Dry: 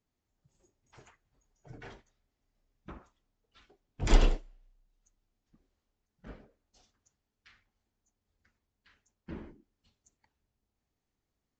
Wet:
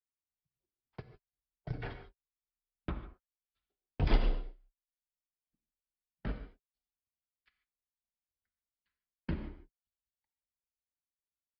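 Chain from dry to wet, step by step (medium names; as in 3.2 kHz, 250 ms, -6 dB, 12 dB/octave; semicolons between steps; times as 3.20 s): transient shaper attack +7 dB, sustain 0 dB; resampled via 11.025 kHz; gate -47 dBFS, range -50 dB; gated-style reverb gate 170 ms flat, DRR 9.5 dB; three bands compressed up and down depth 70%; trim +1 dB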